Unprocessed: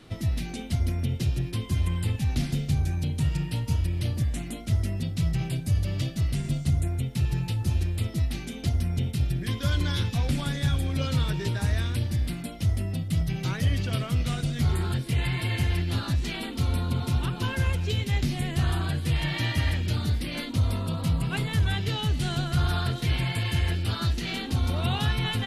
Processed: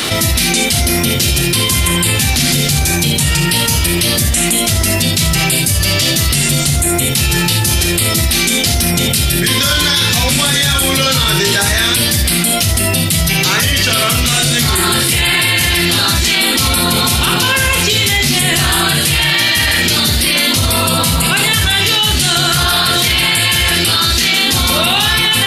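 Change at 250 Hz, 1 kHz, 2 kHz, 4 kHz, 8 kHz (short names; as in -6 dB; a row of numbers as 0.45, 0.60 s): +13.0, +19.0, +22.0, +24.5, +30.0 dB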